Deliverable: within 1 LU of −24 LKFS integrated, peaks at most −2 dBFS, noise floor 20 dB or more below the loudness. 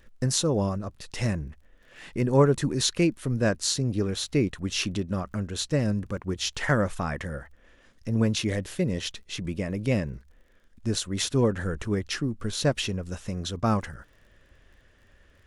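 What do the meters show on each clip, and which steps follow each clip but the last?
crackle rate 37 per second; integrated loudness −27.5 LKFS; sample peak −7.5 dBFS; target loudness −24.0 LKFS
→ click removal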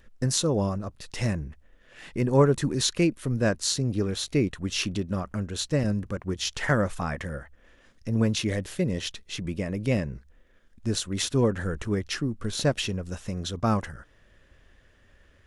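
crackle rate 0.19 per second; integrated loudness −27.5 LKFS; sample peak −7.5 dBFS; target loudness −24.0 LKFS
→ level +3.5 dB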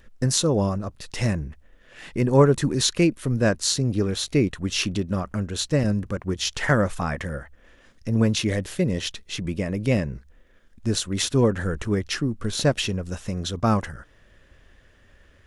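integrated loudness −24.0 LKFS; sample peak −4.0 dBFS; background noise floor −56 dBFS

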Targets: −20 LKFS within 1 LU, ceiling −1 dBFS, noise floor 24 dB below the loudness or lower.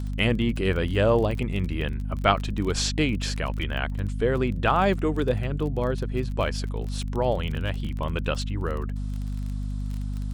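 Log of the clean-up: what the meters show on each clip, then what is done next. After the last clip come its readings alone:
crackle rate 28 per second; mains hum 50 Hz; hum harmonics up to 250 Hz; level of the hum −27 dBFS; integrated loudness −26.5 LKFS; sample peak −4.5 dBFS; target loudness −20.0 LKFS
→ click removal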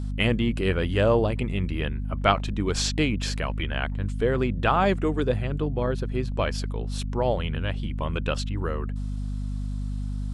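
crackle rate 0 per second; mains hum 50 Hz; hum harmonics up to 250 Hz; level of the hum −27 dBFS
→ mains-hum notches 50/100/150/200/250 Hz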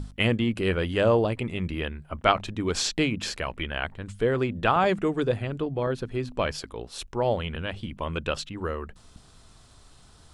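mains hum none found; integrated loudness −27.5 LKFS; sample peak −4.5 dBFS; target loudness −20.0 LKFS
→ level +7.5 dB
brickwall limiter −1 dBFS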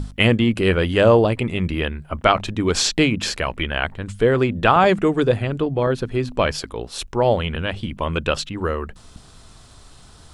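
integrated loudness −20.0 LKFS; sample peak −1.0 dBFS; background noise floor −46 dBFS

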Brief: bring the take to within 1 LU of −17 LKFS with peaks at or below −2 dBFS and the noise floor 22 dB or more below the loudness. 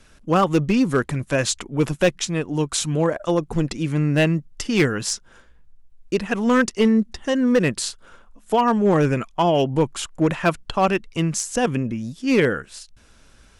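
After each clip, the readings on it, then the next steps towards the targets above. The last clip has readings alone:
share of clipped samples 0.5%; peaks flattened at −10.5 dBFS; integrated loudness −21.5 LKFS; sample peak −10.5 dBFS; target loudness −17.0 LKFS
→ clipped peaks rebuilt −10.5 dBFS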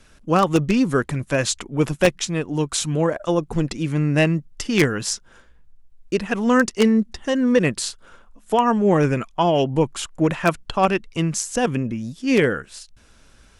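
share of clipped samples 0.0%; integrated loudness −21.0 LKFS; sample peak −1.5 dBFS; target loudness −17.0 LKFS
→ level +4 dB
brickwall limiter −2 dBFS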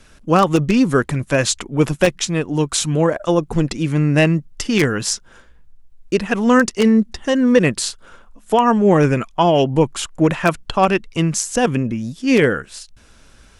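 integrated loudness −17.5 LKFS; sample peak −2.0 dBFS; background noise floor −48 dBFS

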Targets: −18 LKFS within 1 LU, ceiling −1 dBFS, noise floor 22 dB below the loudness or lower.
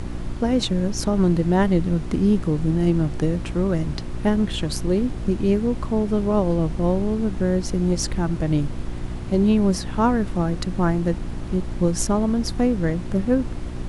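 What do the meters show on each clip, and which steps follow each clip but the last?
mains hum 60 Hz; hum harmonics up to 360 Hz; level of the hum −30 dBFS; background noise floor −30 dBFS; target noise floor −44 dBFS; integrated loudness −22.0 LKFS; sample peak −7.0 dBFS; target loudness −18.0 LKFS
→ hum removal 60 Hz, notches 6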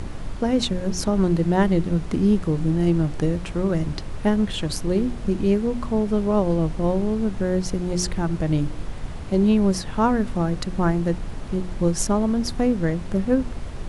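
mains hum none found; background noise floor −33 dBFS; target noise floor −45 dBFS
→ noise reduction from a noise print 12 dB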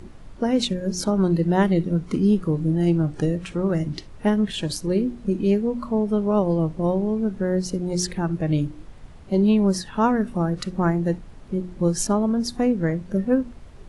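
background noise floor −43 dBFS; target noise floor −45 dBFS
→ noise reduction from a noise print 6 dB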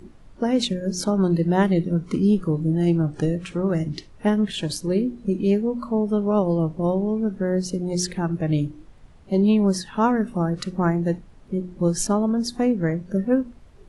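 background noise floor −48 dBFS; integrated loudness −23.0 LKFS; sample peak −7.5 dBFS; target loudness −18.0 LKFS
→ level +5 dB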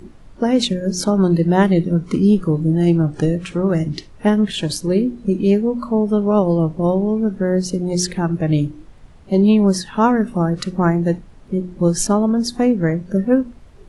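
integrated loudness −18.0 LKFS; sample peak −2.5 dBFS; background noise floor −43 dBFS

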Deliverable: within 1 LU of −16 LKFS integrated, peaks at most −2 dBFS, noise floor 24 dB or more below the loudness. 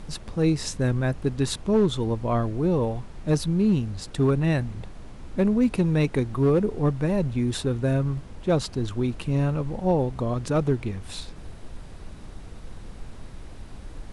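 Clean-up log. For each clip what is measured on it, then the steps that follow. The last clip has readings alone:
share of clipped samples 0.5%; peaks flattened at −14.0 dBFS; background noise floor −41 dBFS; target noise floor −49 dBFS; integrated loudness −25.0 LKFS; sample peak −14.0 dBFS; target loudness −16.0 LKFS
→ clipped peaks rebuilt −14 dBFS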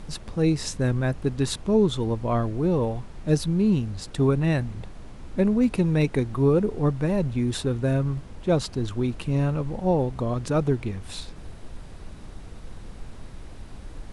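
share of clipped samples 0.0%; background noise floor −41 dBFS; target noise floor −49 dBFS
→ noise reduction from a noise print 8 dB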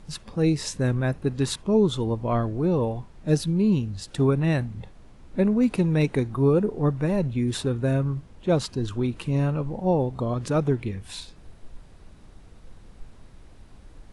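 background noise floor −49 dBFS; integrated loudness −25.0 LKFS; sample peak −8.0 dBFS; target loudness −16.0 LKFS
→ level +9 dB
brickwall limiter −2 dBFS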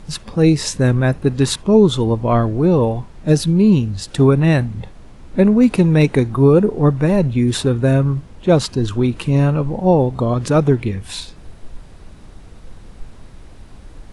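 integrated loudness −16.0 LKFS; sample peak −2.0 dBFS; background noise floor −40 dBFS

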